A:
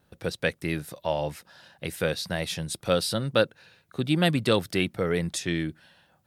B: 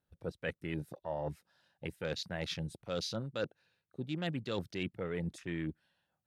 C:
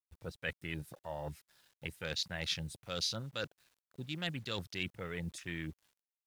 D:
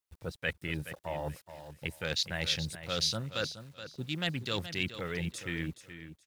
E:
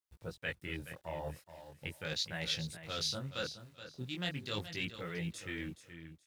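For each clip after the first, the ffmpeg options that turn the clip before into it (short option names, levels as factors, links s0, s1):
-af "afwtdn=0.0158,areverse,acompressor=threshold=0.0282:ratio=6,areverse,volume=0.708"
-af "equalizer=f=350:w=0.31:g=-12.5,acrusher=bits=11:mix=0:aa=0.000001,volume=2"
-af "aecho=1:1:424|848|1272:0.266|0.0585|0.0129,volume=1.78"
-af "flanger=delay=17.5:depth=7.3:speed=0.4,volume=0.794"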